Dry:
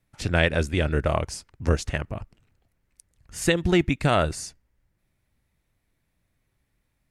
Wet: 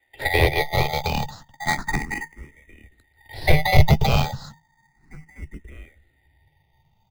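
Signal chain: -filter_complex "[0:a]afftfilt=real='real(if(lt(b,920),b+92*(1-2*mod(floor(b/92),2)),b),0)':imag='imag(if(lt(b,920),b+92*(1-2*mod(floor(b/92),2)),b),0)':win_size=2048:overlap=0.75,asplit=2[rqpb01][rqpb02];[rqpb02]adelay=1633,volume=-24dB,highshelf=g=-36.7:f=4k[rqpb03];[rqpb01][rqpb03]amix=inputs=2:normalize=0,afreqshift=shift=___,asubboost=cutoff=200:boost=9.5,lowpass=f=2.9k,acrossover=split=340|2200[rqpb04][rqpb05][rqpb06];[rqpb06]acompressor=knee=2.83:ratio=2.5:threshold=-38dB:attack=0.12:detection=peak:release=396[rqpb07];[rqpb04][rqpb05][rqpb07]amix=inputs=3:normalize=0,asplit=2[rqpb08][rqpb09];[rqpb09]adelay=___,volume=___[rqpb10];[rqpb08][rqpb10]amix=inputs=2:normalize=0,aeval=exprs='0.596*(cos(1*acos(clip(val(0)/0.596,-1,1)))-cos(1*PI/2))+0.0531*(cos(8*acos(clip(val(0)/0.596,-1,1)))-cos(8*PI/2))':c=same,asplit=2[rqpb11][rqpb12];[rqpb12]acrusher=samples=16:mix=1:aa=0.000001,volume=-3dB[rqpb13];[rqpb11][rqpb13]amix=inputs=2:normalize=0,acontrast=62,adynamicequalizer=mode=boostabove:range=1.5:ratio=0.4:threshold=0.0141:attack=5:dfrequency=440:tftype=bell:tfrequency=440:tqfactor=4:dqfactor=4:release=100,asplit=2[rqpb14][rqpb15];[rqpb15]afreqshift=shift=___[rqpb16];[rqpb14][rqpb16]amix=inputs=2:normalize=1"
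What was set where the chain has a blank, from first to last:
-160, 14, -9.5dB, 0.33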